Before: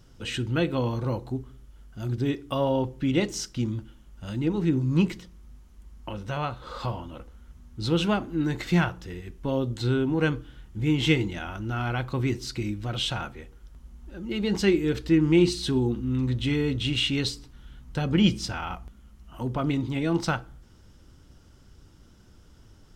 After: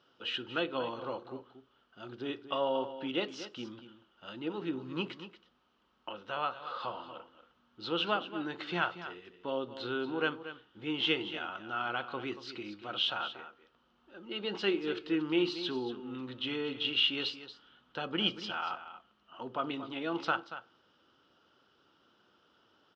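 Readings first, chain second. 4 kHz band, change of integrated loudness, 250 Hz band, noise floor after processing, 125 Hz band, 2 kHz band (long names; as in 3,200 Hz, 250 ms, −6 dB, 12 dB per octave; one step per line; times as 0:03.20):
−1.5 dB, −8.0 dB, −12.0 dB, −71 dBFS, −22.5 dB, −3.5 dB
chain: loudspeaker in its box 420–4,100 Hz, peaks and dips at 1,300 Hz +6 dB, 2,100 Hz −7 dB, 3,000 Hz +6 dB
single-tap delay 233 ms −12.5 dB
level −4.5 dB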